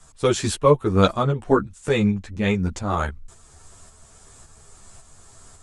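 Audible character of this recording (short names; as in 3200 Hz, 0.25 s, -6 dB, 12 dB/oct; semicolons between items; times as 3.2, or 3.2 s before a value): tremolo saw up 1.8 Hz, depth 45%; a shimmering, thickened sound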